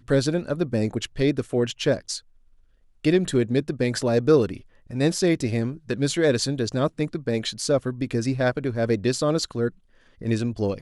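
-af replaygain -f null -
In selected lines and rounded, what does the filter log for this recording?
track_gain = +3.8 dB
track_peak = 0.326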